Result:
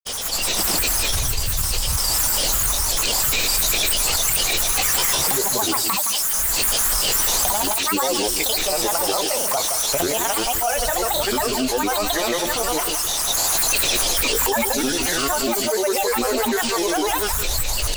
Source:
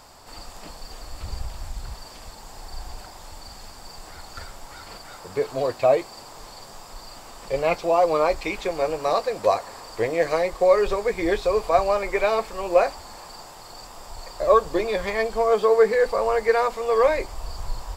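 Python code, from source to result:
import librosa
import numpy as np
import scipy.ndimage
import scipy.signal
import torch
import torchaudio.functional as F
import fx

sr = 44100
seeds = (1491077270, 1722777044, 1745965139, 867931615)

p1 = fx.recorder_agc(x, sr, target_db=-9.5, rise_db_per_s=31.0, max_gain_db=30)
p2 = F.preemphasis(torch.from_numpy(p1), 0.8).numpy()
p3 = p2 + fx.echo_wet_highpass(p2, sr, ms=798, feedback_pct=84, hz=3600.0, wet_db=-9.5, dry=0)
p4 = fx.granulator(p3, sr, seeds[0], grain_ms=100.0, per_s=20.0, spray_ms=100.0, spread_st=12)
p5 = fx.high_shelf(p4, sr, hz=8700.0, db=6.5)
p6 = p5 + 10.0 ** (-11.0 / 20.0) * np.pad(p5, (int(169 * sr / 1000.0), 0))[:len(p5)]
p7 = fx.env_flatten(p6, sr, amount_pct=70)
y = p7 * librosa.db_to_amplitude(4.0)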